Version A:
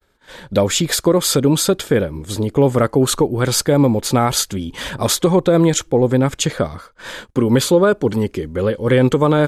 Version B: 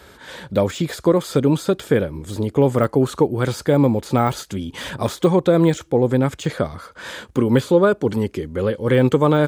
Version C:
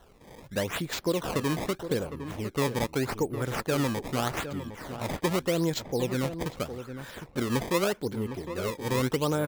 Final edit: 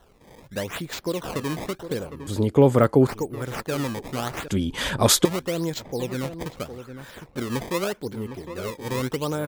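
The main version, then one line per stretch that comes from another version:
C
2.27–3.07 s: from B
4.48–5.25 s: from A

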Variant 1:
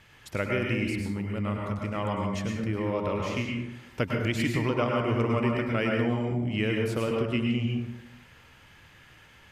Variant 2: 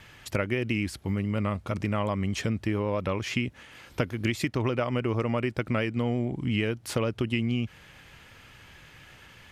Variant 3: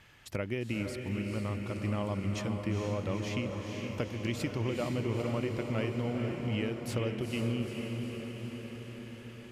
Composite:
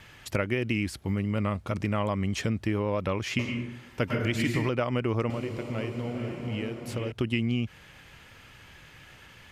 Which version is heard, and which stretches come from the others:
2
3.39–4.69 s: from 1
5.30–7.12 s: from 3

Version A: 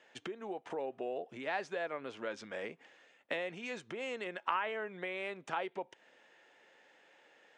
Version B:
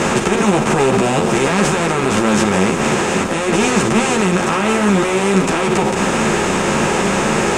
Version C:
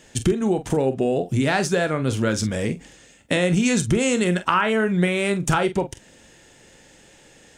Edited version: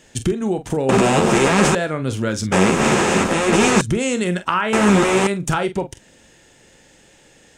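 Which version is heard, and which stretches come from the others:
C
0.89–1.75 s: from B
2.52–3.81 s: from B
4.73–5.27 s: from B
not used: A

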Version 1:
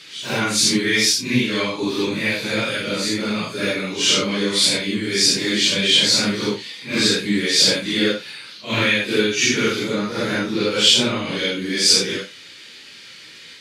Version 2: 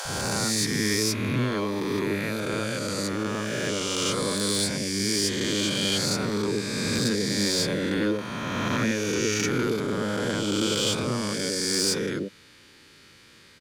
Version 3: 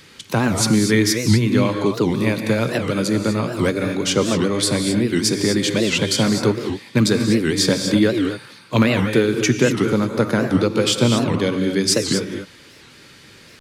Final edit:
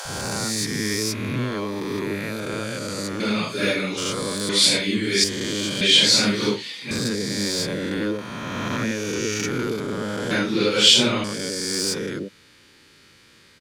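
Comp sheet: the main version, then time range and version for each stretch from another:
2
3.20–3.97 s: from 1
4.49–5.24 s: from 1
5.81–6.91 s: from 1
10.31–11.24 s: from 1
not used: 3

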